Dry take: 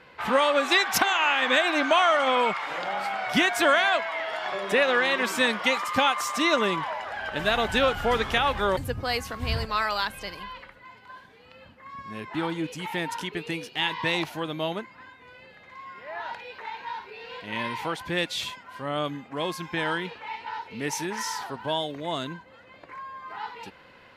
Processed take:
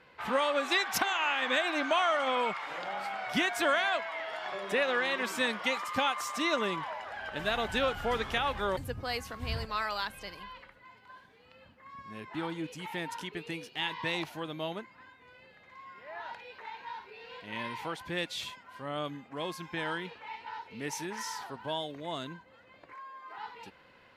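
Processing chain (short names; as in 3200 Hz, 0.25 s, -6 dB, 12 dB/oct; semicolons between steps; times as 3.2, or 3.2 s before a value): 22.93–23.38 HPF 260 Hz 24 dB/oct; gain -7 dB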